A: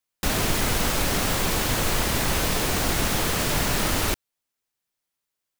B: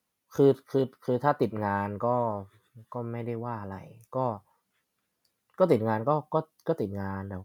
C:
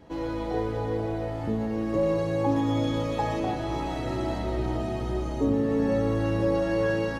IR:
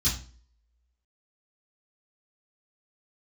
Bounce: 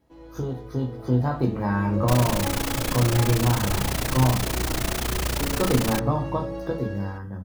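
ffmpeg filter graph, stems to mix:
-filter_complex "[0:a]tremolo=f=29:d=0.974,adelay=1850,volume=-9dB[link_01];[1:a]acompressor=threshold=-30dB:ratio=2.5,volume=-4dB,asplit=2[link_02][link_03];[link_03]volume=-9dB[link_04];[2:a]volume=-15.5dB,asplit=2[link_05][link_06];[link_06]volume=-22.5dB[link_07];[3:a]atrim=start_sample=2205[link_08];[link_04][link_07]amix=inputs=2:normalize=0[link_09];[link_09][link_08]afir=irnorm=-1:irlink=0[link_10];[link_01][link_02][link_05][link_10]amix=inputs=4:normalize=0,dynaudnorm=framelen=330:gausssize=7:maxgain=9dB"

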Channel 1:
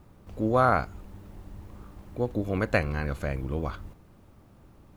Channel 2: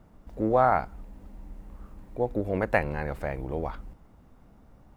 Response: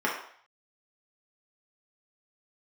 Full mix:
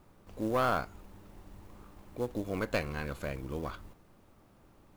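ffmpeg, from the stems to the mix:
-filter_complex "[0:a]equalizer=frequency=75:width=0.38:gain=-7.5,asoftclip=type=tanh:threshold=-16.5dB,acrusher=bits=6:mode=log:mix=0:aa=0.000001,volume=-2.5dB[link_01];[1:a]highpass=950,aeval=exprs='max(val(0),0)':channel_layout=same,volume=-7.5dB[link_02];[link_01][link_02]amix=inputs=2:normalize=0"

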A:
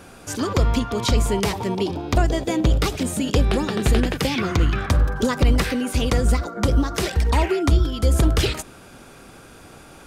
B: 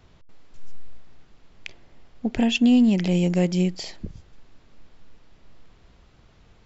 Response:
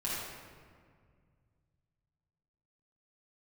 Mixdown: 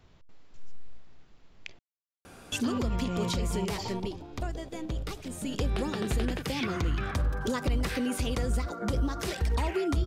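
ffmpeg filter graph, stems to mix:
-filter_complex "[0:a]adelay=2250,volume=6dB,afade=type=out:start_time=3.75:duration=0.41:silence=0.316228,afade=type=in:start_time=5.25:duration=0.77:silence=0.251189[link_01];[1:a]acompressor=threshold=-23dB:ratio=6,volume=-4.5dB,asplit=3[link_02][link_03][link_04];[link_02]atrim=end=1.79,asetpts=PTS-STARTPTS,afade=type=out:start_time=1.786:duration=0.004:curve=hsin[link_05];[link_03]atrim=start=1.79:end=2.52,asetpts=PTS-STARTPTS,volume=0[link_06];[link_04]atrim=start=2.52,asetpts=PTS-STARTPTS,afade=type=in:duration=0.004:curve=hsin[link_07];[link_05][link_06][link_07]concat=n=3:v=0:a=1[link_08];[link_01][link_08]amix=inputs=2:normalize=0,alimiter=limit=-20.5dB:level=0:latency=1:release=214"

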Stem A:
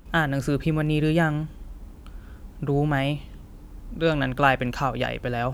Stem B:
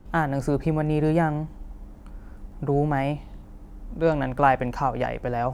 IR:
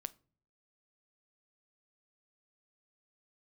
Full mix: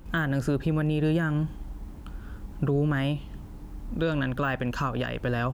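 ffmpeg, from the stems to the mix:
-filter_complex "[0:a]deesser=0.65,volume=-0.5dB[link_01];[1:a]lowpass=4300,adelay=0.9,volume=-2dB[link_02];[link_01][link_02]amix=inputs=2:normalize=0,alimiter=limit=-17dB:level=0:latency=1:release=270"

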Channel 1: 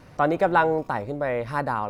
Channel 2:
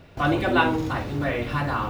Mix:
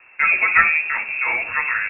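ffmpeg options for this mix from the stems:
ffmpeg -i stem1.wav -i stem2.wav -filter_complex "[0:a]volume=1.5dB,asplit=2[link_01][link_02];[1:a]adelay=1.8,volume=2dB[link_03];[link_02]apad=whole_len=83804[link_04];[link_03][link_04]sidechaingate=range=-33dB:threshold=-36dB:ratio=16:detection=peak[link_05];[link_01][link_05]amix=inputs=2:normalize=0,lowshelf=frequency=160:gain=-5,lowpass=frequency=2400:width_type=q:width=0.5098,lowpass=frequency=2400:width_type=q:width=0.6013,lowpass=frequency=2400:width_type=q:width=0.9,lowpass=frequency=2400:width_type=q:width=2.563,afreqshift=-2800" out.wav

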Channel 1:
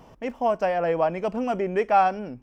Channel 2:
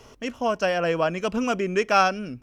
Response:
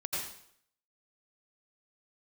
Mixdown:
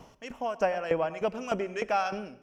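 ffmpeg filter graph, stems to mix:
-filter_complex "[0:a]aeval=exprs='val(0)*pow(10,-25*if(lt(mod(3.3*n/s,1),2*abs(3.3)/1000),1-mod(3.3*n/s,1)/(2*abs(3.3)/1000),(mod(3.3*n/s,1)-2*abs(3.3)/1000)/(1-2*abs(3.3)/1000))/20)':channel_layout=same,volume=0dB,asplit=3[link_01][link_02][link_03];[link_02]volume=-16dB[link_04];[1:a]highpass=frequency=960:poles=1,volume=-9.5dB,asplit=2[link_05][link_06];[link_06]volume=-22dB[link_07];[link_03]apad=whole_len=106832[link_08];[link_05][link_08]sidechaincompress=threshold=-32dB:ratio=8:attack=8.6:release=214[link_09];[2:a]atrim=start_sample=2205[link_10];[link_04][link_07]amix=inputs=2:normalize=0[link_11];[link_11][link_10]afir=irnorm=-1:irlink=0[link_12];[link_01][link_09][link_12]amix=inputs=3:normalize=0"

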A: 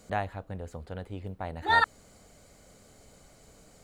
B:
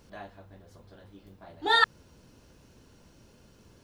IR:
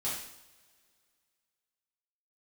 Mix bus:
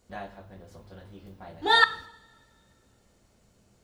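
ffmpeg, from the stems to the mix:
-filter_complex "[0:a]volume=-12.5dB,asplit=2[link_01][link_02];[1:a]volume=-1,volume=1.5dB,asplit=2[link_03][link_04];[link_04]volume=-15dB[link_05];[link_02]apad=whole_len=168940[link_06];[link_03][link_06]sidechaingate=range=-33dB:threshold=-60dB:ratio=16:detection=peak[link_07];[2:a]atrim=start_sample=2205[link_08];[link_05][link_08]afir=irnorm=-1:irlink=0[link_09];[link_01][link_07][link_09]amix=inputs=3:normalize=0"

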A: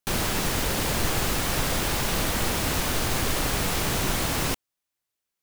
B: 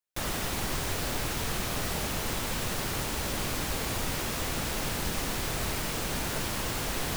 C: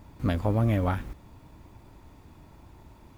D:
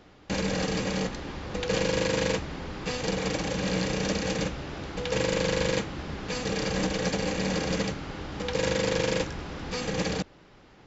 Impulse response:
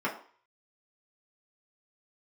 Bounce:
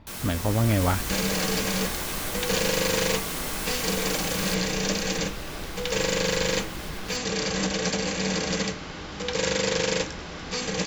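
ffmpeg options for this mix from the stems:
-filter_complex "[0:a]volume=-18dB,asplit=2[link_01][link_02];[link_02]volume=-8dB[link_03];[1:a]asubboost=boost=11:cutoff=53,acompressor=threshold=-19dB:ratio=6,volume=-19.5dB[link_04];[2:a]lowpass=frequency=4100:width=0.5412,lowpass=frequency=4100:width=1.3066,volume=-1dB[link_05];[3:a]adelay=800,volume=-6dB,asplit=2[link_06][link_07];[link_07]volume=-14.5dB[link_08];[4:a]atrim=start_sample=2205[link_09];[link_03][link_08]amix=inputs=2:normalize=0[link_10];[link_10][link_09]afir=irnorm=-1:irlink=0[link_11];[link_01][link_04][link_05][link_06][link_11]amix=inputs=5:normalize=0,highshelf=frequency=3000:gain=10,dynaudnorm=framelen=410:gausssize=3:maxgain=4dB"

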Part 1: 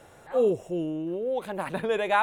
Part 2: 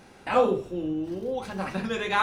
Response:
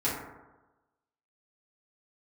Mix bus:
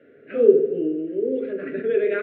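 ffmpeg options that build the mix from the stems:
-filter_complex "[0:a]volume=-4dB,asplit=3[link_01][link_02][link_03];[link_02]volume=-8dB[link_04];[1:a]deesser=0.95,volume=-1,adelay=1.9,volume=-6dB,asplit=2[link_05][link_06];[link_06]volume=-18.5dB[link_07];[link_03]apad=whole_len=98358[link_08];[link_05][link_08]sidechaingate=range=-33dB:threshold=-50dB:ratio=16:detection=peak[link_09];[2:a]atrim=start_sample=2205[link_10];[link_04][link_07]amix=inputs=2:normalize=0[link_11];[link_11][link_10]afir=irnorm=-1:irlink=0[link_12];[link_01][link_09][link_12]amix=inputs=3:normalize=0,asuperstop=centerf=910:order=4:qfactor=1,highpass=210,equalizer=frequency=250:width_type=q:width=4:gain=7,equalizer=frequency=400:width_type=q:width=4:gain=10,equalizer=frequency=780:width_type=q:width=4:gain=-7,equalizer=frequency=1200:width_type=q:width=4:gain=-5,lowpass=frequency=2300:width=0.5412,lowpass=frequency=2300:width=1.3066"

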